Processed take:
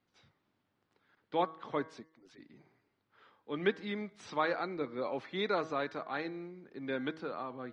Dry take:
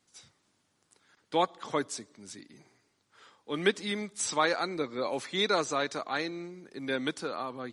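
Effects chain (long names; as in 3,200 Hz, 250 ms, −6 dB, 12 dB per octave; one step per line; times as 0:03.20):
0:02.00–0:02.40: harmonic-percussive split with one part muted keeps percussive
high-frequency loss of the air 310 metres
hum removal 159.4 Hz, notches 14
level −3 dB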